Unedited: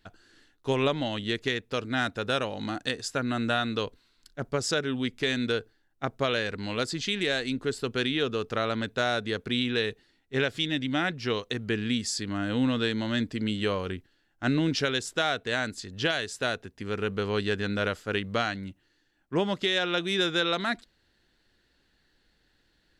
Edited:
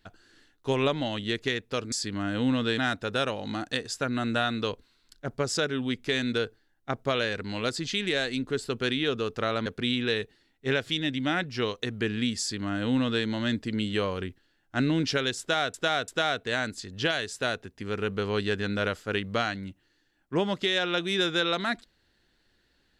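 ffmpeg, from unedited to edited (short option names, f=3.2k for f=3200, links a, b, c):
-filter_complex "[0:a]asplit=6[a][b][c][d][e][f];[a]atrim=end=1.922[g];[b]atrim=start=12.068:end=12.932[h];[c]atrim=start=1.918:end=8.802[i];[d]atrim=start=9.338:end=15.422[j];[e]atrim=start=15.078:end=15.422[k];[f]atrim=start=15.078[l];[g][h]acrossfade=d=0.004:c1=hsin:c2=hsin[m];[m][i]acrossfade=d=0.004:c1=hsin:c2=hsin[n];[n][j]acrossfade=d=0.004:c1=hsin:c2=hsin[o];[o][k]acrossfade=d=0.004:c1=hsin:c2=hsin[p];[p][l]acrossfade=d=0.004:c1=hsin:c2=hsin"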